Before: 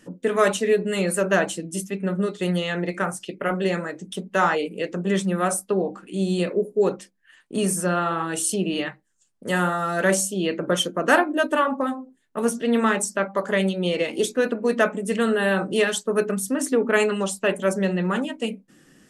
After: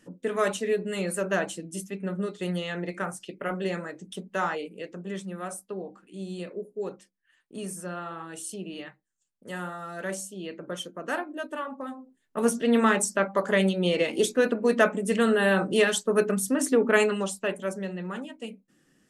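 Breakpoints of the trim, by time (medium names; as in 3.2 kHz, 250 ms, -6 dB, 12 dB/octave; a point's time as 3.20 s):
4.18 s -6.5 dB
5.21 s -13 dB
11.77 s -13 dB
12.45 s -1 dB
16.93 s -1 dB
17.87 s -11 dB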